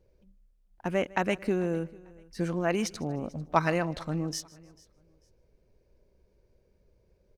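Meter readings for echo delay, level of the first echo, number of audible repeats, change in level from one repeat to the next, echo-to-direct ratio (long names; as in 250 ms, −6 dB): 153 ms, −23.0 dB, 3, repeats not evenly spaced, −20.0 dB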